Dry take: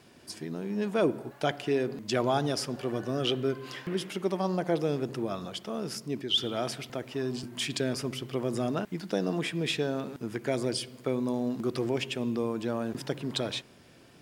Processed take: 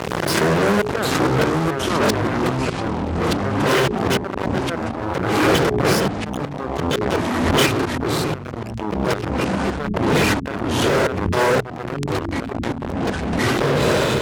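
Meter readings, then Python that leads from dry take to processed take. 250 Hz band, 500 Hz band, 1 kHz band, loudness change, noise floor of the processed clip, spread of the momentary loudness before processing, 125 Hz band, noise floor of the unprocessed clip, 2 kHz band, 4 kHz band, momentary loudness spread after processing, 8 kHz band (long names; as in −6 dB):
+10.5 dB, +10.5 dB, +15.5 dB, +11.0 dB, −29 dBFS, 7 LU, +13.5 dB, −55 dBFS, +16.5 dB, +8.0 dB, 8 LU, +12.0 dB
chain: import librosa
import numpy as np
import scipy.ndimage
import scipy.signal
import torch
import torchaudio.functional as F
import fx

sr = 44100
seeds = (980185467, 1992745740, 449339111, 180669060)

p1 = fx.lower_of_two(x, sr, delay_ms=2.0)
p2 = fx.spec_paint(p1, sr, seeds[0], shape='rise', start_s=7.82, length_s=0.36, low_hz=230.0, high_hz=1300.0, level_db=-36.0)
p3 = fx.curve_eq(p2, sr, hz=(100.0, 160.0, 7500.0), db=(0, 13, -8))
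p4 = p3 + fx.echo_diffused(p3, sr, ms=536, feedback_pct=40, wet_db=-10.5, dry=0)
p5 = fx.gate_flip(p4, sr, shuts_db=-22.0, range_db=-29)
p6 = fx.rider(p5, sr, range_db=3, speed_s=2.0)
p7 = p5 + (p6 * 10.0 ** (-1.5 / 20.0))
p8 = fx.fuzz(p7, sr, gain_db=39.0, gate_db=-44.0)
p9 = fx.dynamic_eq(p8, sr, hz=1600.0, q=1.3, threshold_db=-37.0, ratio=4.0, max_db=5)
p10 = scipy.signal.sosfilt(scipy.signal.butter(2, 62.0, 'highpass', fs=sr, output='sos'), p9)
p11 = fx.hum_notches(p10, sr, base_hz=60, count=7)
p12 = fx.echo_pitch(p11, sr, ms=678, semitones=-4, count=3, db_per_echo=-3.0)
p13 = fx.pre_swell(p12, sr, db_per_s=28.0)
y = p13 * 10.0 ** (-2.0 / 20.0)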